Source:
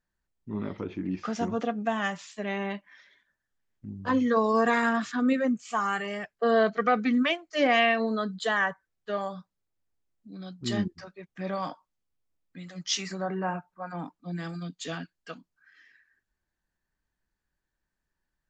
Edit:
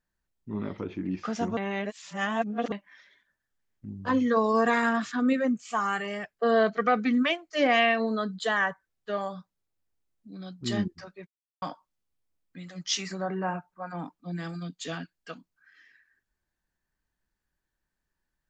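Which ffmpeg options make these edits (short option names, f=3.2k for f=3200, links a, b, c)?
-filter_complex "[0:a]asplit=5[a][b][c][d][e];[a]atrim=end=1.572[f];[b]atrim=start=1.568:end=2.722,asetpts=PTS-STARTPTS,areverse[g];[c]atrim=start=2.718:end=11.27,asetpts=PTS-STARTPTS,afade=t=out:st=8.548:d=0.004:c=hsin[h];[d]atrim=start=11.27:end=11.62,asetpts=PTS-STARTPTS,volume=0[i];[e]atrim=start=11.62,asetpts=PTS-STARTPTS,afade=t=in:d=0.004:c=hsin[j];[f][g]acrossfade=d=0.004:c1=hsin:c2=hsin[k];[h][i][j]concat=n=3:v=0:a=1[l];[k][l]acrossfade=d=0.004:c1=hsin:c2=hsin"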